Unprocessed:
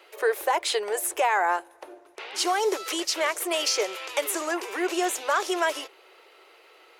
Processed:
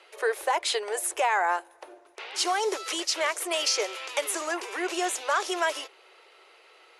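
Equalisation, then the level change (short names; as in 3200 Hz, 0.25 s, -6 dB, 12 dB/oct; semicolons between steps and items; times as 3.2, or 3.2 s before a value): Chebyshev low-pass 11000 Hz, order 4; bell 170 Hz -14 dB 1.2 oct; 0.0 dB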